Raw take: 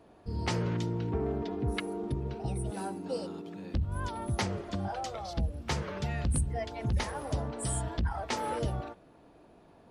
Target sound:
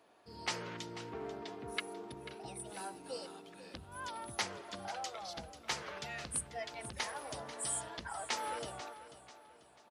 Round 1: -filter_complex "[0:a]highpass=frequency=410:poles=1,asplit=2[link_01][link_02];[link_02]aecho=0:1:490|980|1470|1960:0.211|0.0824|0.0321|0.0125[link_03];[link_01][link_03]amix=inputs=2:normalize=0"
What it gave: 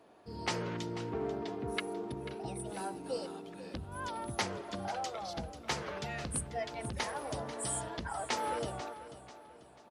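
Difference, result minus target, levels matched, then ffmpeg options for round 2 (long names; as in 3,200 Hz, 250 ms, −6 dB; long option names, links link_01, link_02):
500 Hz band +3.5 dB
-filter_complex "[0:a]highpass=frequency=1300:poles=1,asplit=2[link_01][link_02];[link_02]aecho=0:1:490|980|1470|1960:0.211|0.0824|0.0321|0.0125[link_03];[link_01][link_03]amix=inputs=2:normalize=0"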